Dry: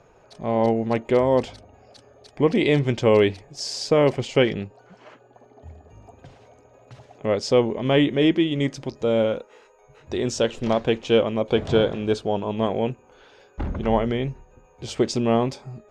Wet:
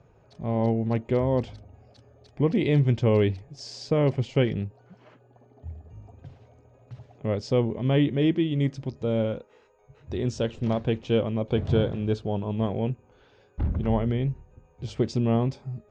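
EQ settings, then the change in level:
high-frequency loss of the air 100 metres
parametric band 93 Hz +14 dB 2.7 octaves
high-shelf EQ 4,000 Hz +5.5 dB
−9.0 dB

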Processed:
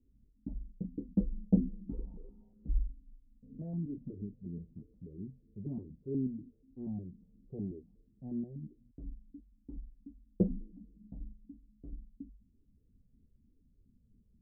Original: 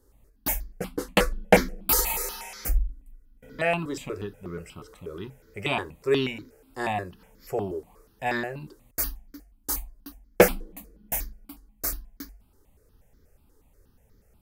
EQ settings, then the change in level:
transistor ladder low-pass 270 Hz, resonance 50%
+2.0 dB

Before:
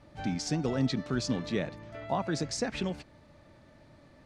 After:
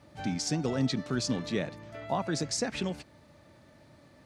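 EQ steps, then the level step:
high-pass filter 67 Hz
high-shelf EQ 7,500 Hz +9.5 dB
0.0 dB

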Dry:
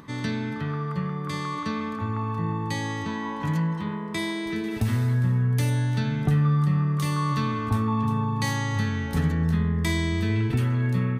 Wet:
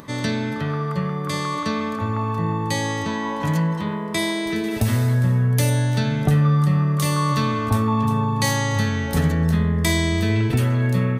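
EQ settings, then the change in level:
parametric band 590 Hz +9 dB 0.55 octaves
high-shelf EQ 4,500 Hz +8.5 dB
+4.0 dB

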